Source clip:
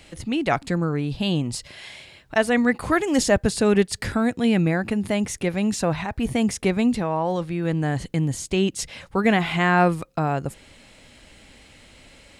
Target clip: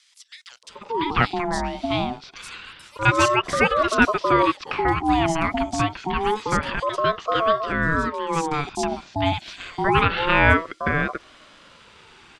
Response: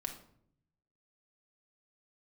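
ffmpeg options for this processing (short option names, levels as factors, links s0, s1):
-filter_complex "[0:a]highpass=220,lowpass=5000,acrossover=split=370|3800[s0][s1][s2];[s0]adelay=630[s3];[s1]adelay=690[s4];[s3][s4][s2]amix=inputs=3:normalize=0,aeval=exprs='val(0)*sin(2*PI*680*n/s+680*0.3/0.27*sin(2*PI*0.27*n/s))':c=same,volume=2.11"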